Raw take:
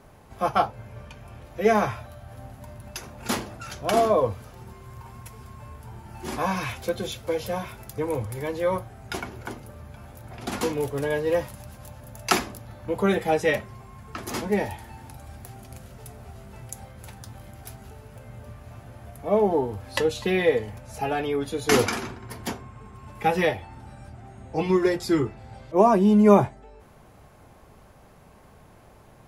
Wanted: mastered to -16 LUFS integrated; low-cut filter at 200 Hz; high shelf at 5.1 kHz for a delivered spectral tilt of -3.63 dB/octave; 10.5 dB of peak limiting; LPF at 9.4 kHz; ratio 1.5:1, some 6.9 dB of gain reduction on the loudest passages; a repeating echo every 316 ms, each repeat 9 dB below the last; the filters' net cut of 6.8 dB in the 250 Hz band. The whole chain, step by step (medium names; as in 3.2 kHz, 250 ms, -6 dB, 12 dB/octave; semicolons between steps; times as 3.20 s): high-pass 200 Hz; low-pass 9.4 kHz; peaking EQ 250 Hz -7 dB; treble shelf 5.1 kHz +5 dB; compression 1.5:1, threshold -33 dBFS; peak limiter -20.5 dBFS; feedback delay 316 ms, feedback 35%, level -9 dB; trim +17.5 dB